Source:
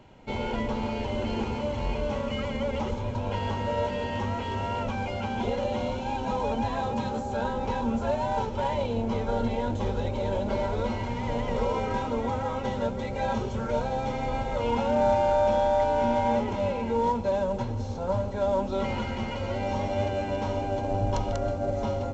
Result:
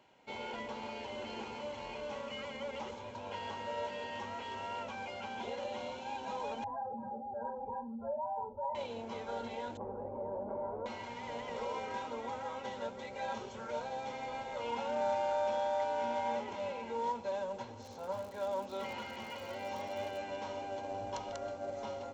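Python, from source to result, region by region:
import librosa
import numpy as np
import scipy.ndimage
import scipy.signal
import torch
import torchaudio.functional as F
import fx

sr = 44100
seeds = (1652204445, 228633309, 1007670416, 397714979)

y = fx.chain(x, sr, fx.spec_expand(power=2.3),
    fx.lowpass(hz=1800.0, slope=24),
    fx.room_flutter(wall_m=7.5, rt60_s=0.26), at=(6.64, 8.75))
y = fx.chain(y, sr, fx.lowpass(hz=1000.0, slope=24),
    fx.env_flatten(amount_pct=70), at=(9.77, 10.86))
y = fx.highpass(y, sr, hz=41.0, slope=12, at=(17.81, 20.17), fade=0.02)
y = fx.dmg_crackle(y, sr, seeds[0], per_s=130.0, level_db=-37.0, at=(17.81, 20.17), fade=0.02)
y = fx.highpass(y, sr, hz=750.0, slope=6)
y = fx.notch(y, sr, hz=1300.0, q=25.0)
y = y * librosa.db_to_amplitude(-6.5)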